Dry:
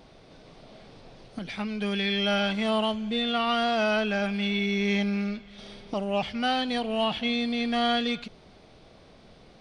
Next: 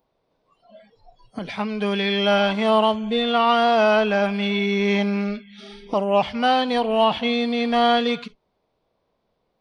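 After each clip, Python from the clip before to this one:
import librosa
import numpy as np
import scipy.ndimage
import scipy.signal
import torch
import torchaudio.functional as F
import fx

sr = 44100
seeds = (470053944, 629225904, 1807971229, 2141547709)

y = fx.peak_eq(x, sr, hz=980.0, db=7.0, octaves=0.31)
y = fx.noise_reduce_blind(y, sr, reduce_db=26)
y = fx.graphic_eq(y, sr, hz=(500, 1000, 8000), db=(6, 3, -3))
y = F.gain(torch.from_numpy(y), 3.5).numpy()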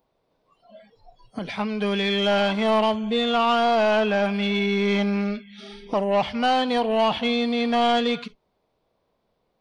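y = 10.0 ** (-13.5 / 20.0) * np.tanh(x / 10.0 ** (-13.5 / 20.0))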